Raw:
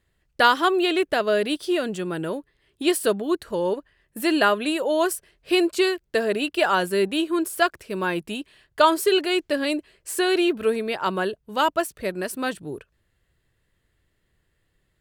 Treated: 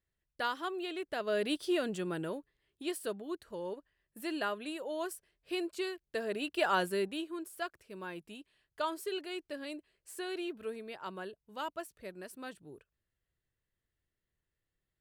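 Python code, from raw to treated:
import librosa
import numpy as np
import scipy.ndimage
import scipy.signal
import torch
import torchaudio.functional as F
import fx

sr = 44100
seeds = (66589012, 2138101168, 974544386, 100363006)

y = fx.gain(x, sr, db=fx.line((1.01, -17.5), (1.49, -8.0), (2.11, -8.0), (2.87, -16.0), (5.94, -16.0), (6.8, -8.0), (7.38, -18.0)))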